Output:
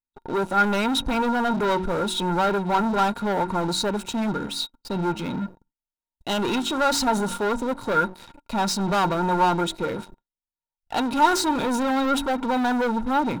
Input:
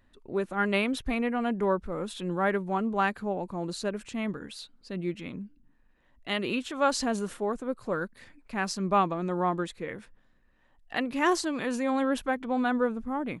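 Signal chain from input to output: de-hum 46.57 Hz, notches 8; gate -57 dBFS, range -20 dB; peaking EQ 1.8 kHz -14.5 dB 0.62 oct; waveshaping leveller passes 5; small resonant body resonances 920/1400/3800 Hz, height 17 dB, ringing for 55 ms; trim -6 dB

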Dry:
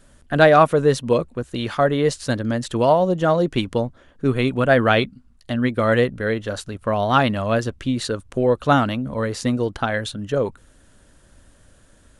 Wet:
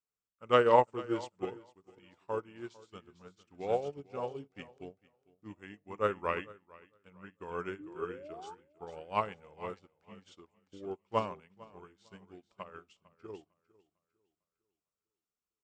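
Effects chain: high-pass 53 Hz; bass shelf 310 Hz -11.5 dB; painted sound rise, 6.07–6.67 s, 360–1200 Hz -24 dBFS; tape speed -22%; feedback delay 452 ms, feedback 43%, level -9 dB; on a send at -17 dB: reverberation RT60 0.55 s, pre-delay 7 ms; on the sum: upward expansion 2.5:1, over -34 dBFS; trim -7 dB

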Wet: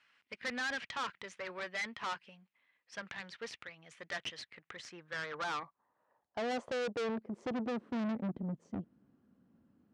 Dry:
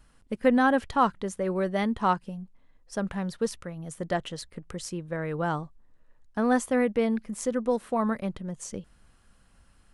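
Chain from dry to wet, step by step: band-pass sweep 2.3 kHz -> 260 Hz, 4.50–7.96 s; valve stage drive 43 dB, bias 0.7; Chebyshev band-pass 110–5800 Hz, order 2; trim +10 dB

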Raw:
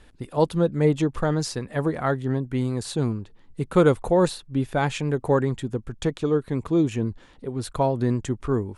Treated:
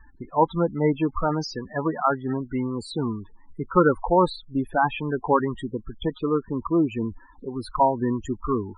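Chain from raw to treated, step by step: ten-band graphic EQ 125 Hz -10 dB, 500 Hz -6 dB, 1 kHz +7 dB; loudest bins only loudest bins 16; trim +3 dB

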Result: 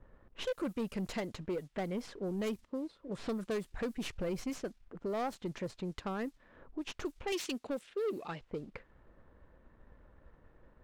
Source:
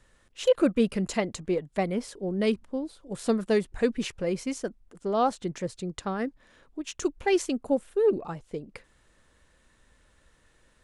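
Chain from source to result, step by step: tracing distortion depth 0.21 ms; 7.32–8.41 s: frequency weighting D; compression 2:1, threshold -48 dBFS, peak gain reduction 17 dB; 2.64–3.17 s: comb of notches 780 Hz; added noise blue -71 dBFS; waveshaping leveller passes 1; 4.08–4.50 s: bass shelf 110 Hz +7.5 dB; level-controlled noise filter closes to 790 Hz, open at -33 dBFS; saturation -30.5 dBFS, distortion -18 dB; trim +2 dB

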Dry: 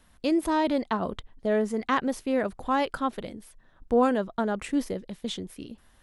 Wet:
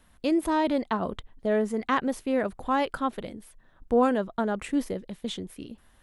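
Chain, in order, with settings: peaking EQ 5.3 kHz -3.5 dB 0.77 oct

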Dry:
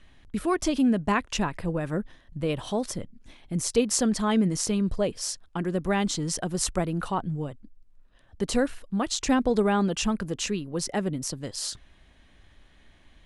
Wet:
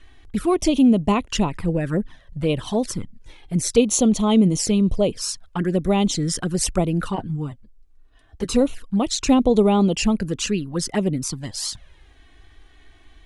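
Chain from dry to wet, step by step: 7.15–8.61 s: comb of notches 180 Hz; touch-sensitive flanger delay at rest 2.9 ms, full sweep at -22.5 dBFS; trim +7.5 dB

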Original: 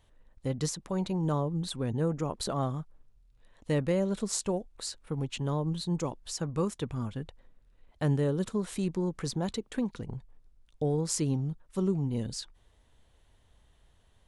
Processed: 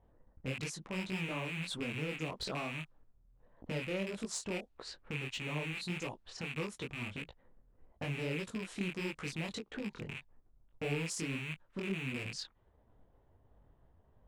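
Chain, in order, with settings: rattle on loud lows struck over -36 dBFS, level -20 dBFS; treble shelf 7.4 kHz -2 dB; level-controlled noise filter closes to 850 Hz, open at -26.5 dBFS; transient shaper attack +4 dB, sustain -4 dB; compression, threshold -31 dBFS, peak gain reduction 10.5 dB; peak limiter -30 dBFS, peak gain reduction 12 dB; overload inside the chain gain 33.5 dB; bass shelf 62 Hz -9.5 dB; detune thickener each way 57 cents; trim +6 dB

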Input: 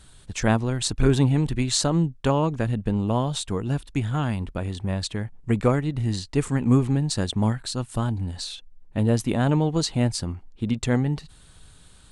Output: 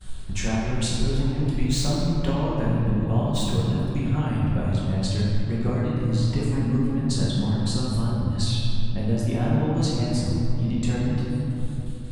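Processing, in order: 1.66–3.89 s: median filter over 3 samples; reverb removal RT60 1.1 s; gate -53 dBFS, range -23 dB; bass shelf 130 Hz +9.5 dB; compression 4:1, threshold -32 dBFS, peak gain reduction 20 dB; simulated room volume 160 m³, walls hard, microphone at 1 m; trim +1.5 dB

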